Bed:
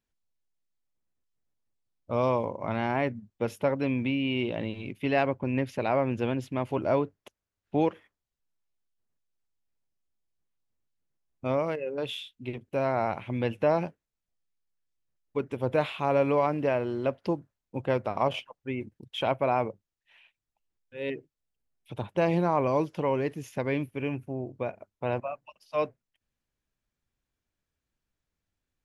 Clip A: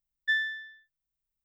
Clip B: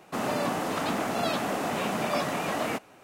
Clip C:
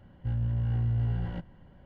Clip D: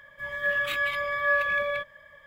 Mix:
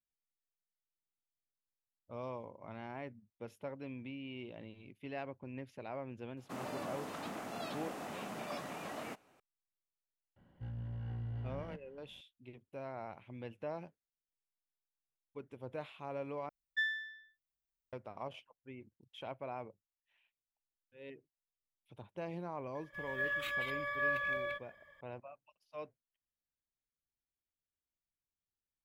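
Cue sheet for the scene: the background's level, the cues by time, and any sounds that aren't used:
bed -17.5 dB
6.37 add B -14.5 dB
10.36 add C -9 dB + low shelf 92 Hz -11 dB
16.49 replace with A -7.5 dB
22.75 add D -10 dB

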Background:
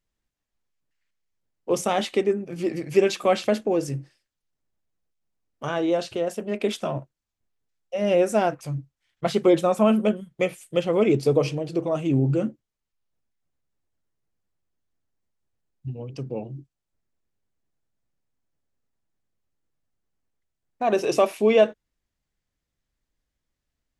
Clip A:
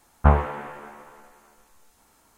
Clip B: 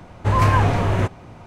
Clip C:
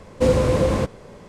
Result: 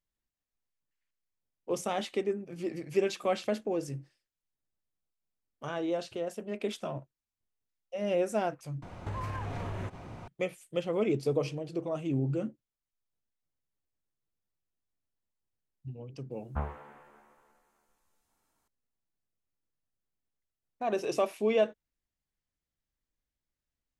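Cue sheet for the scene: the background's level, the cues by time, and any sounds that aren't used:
background -9 dB
8.82 replace with B -3.5 dB + compressor 12:1, threshold -29 dBFS
16.31 add A -17.5 dB
not used: C

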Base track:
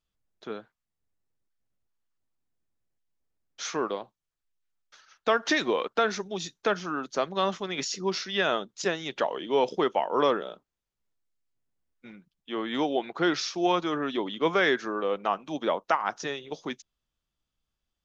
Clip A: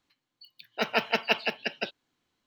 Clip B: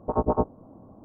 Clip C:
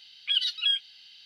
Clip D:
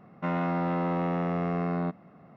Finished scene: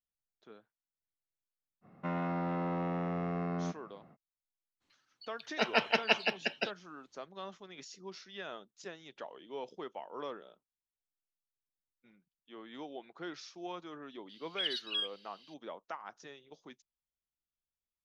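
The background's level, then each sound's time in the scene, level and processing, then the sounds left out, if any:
base track -18 dB
1.81 add D -6.5 dB, fades 0.05 s
4.8 add A -2.5 dB, fades 0.02 s + LPF 11000 Hz 24 dB/oct
14.29 add C -10 dB + downsampling 32000 Hz
not used: B

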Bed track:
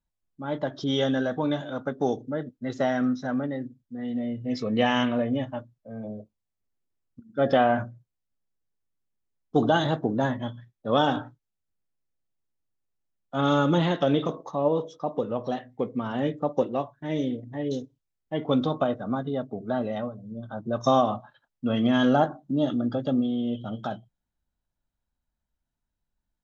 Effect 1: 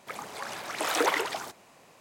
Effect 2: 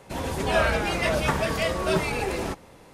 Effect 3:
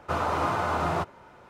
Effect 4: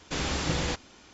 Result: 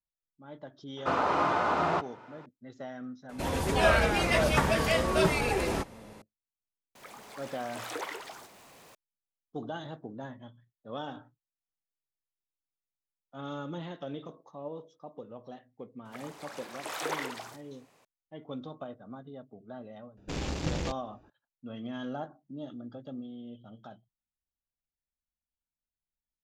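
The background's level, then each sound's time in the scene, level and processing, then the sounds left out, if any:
bed track -16.5 dB
0.97 add 3 + BPF 180–5500 Hz
3.29 add 2 -1 dB
6.95 add 1 -12.5 dB + zero-crossing step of -38 dBFS
16.05 add 1 -8.5 dB + doubler 48 ms -11.5 dB
20.17 add 4 -2 dB + Wiener smoothing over 41 samples

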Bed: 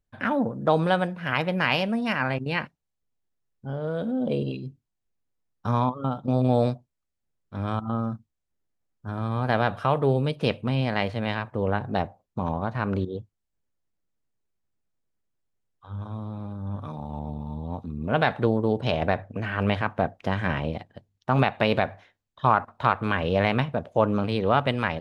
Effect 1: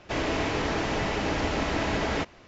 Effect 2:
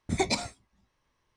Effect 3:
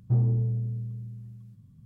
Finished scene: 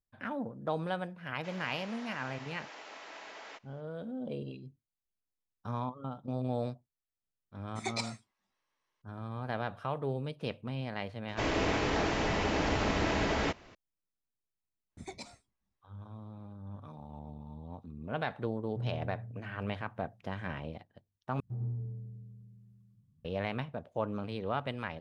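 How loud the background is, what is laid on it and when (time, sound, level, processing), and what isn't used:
bed -12.5 dB
1.34 add 1 -16.5 dB + HPF 680 Hz
7.66 add 2 -7.5 dB + weighting filter A
11.28 add 1 -3 dB
14.88 add 2 -18 dB, fades 0.05 s
18.66 add 3 -15.5 dB
21.4 replace with 3 -16 dB + echo 0.1 s -4 dB

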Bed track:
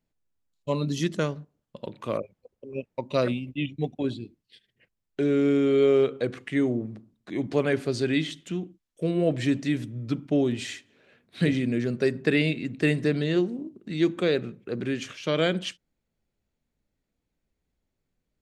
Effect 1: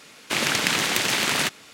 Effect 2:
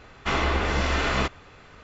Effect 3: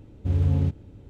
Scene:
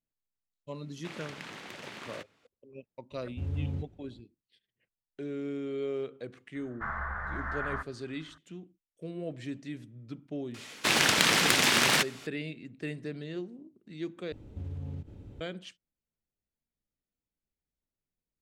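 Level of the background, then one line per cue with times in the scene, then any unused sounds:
bed track -14 dB
0.74 add 1 -18 dB + LPF 1900 Hz 6 dB/oct
3.12 add 3 -11.5 dB
6.55 add 2 -13.5 dB + EQ curve 180 Hz 0 dB, 280 Hz -21 dB, 410 Hz -15 dB, 600 Hz -4 dB, 1700 Hz +11 dB, 2600 Hz -25 dB
10.54 add 1 -1 dB + Doppler distortion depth 0.49 ms
14.32 replace with 3 -1.5 dB + compressor 8:1, threshold -34 dBFS

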